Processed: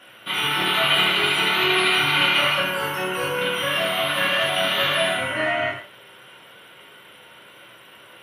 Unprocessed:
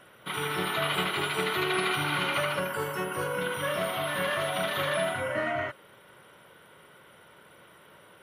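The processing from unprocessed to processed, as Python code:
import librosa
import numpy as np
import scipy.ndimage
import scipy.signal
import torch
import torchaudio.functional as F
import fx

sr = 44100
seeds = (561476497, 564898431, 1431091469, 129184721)

y = scipy.signal.sosfilt(scipy.signal.butter(2, 110.0, 'highpass', fs=sr, output='sos'), x)
y = fx.peak_eq(y, sr, hz=2800.0, db=8.5, octaves=0.97)
y = fx.rev_gated(y, sr, seeds[0], gate_ms=190, shape='falling', drr_db=-4.5)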